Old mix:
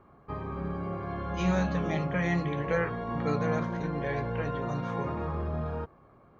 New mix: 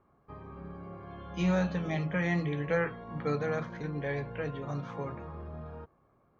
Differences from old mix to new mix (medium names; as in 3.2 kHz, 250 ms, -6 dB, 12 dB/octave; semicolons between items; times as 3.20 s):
background -10.0 dB; master: add distance through air 57 m